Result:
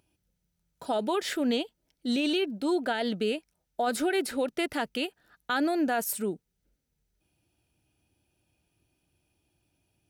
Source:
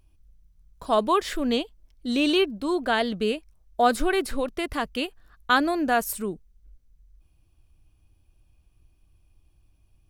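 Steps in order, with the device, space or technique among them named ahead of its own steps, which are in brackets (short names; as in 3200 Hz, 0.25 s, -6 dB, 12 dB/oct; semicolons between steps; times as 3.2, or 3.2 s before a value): PA system with an anti-feedback notch (HPF 170 Hz 12 dB/oct; Butterworth band-stop 1100 Hz, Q 5.4; limiter -19.5 dBFS, peak gain reduction 11 dB)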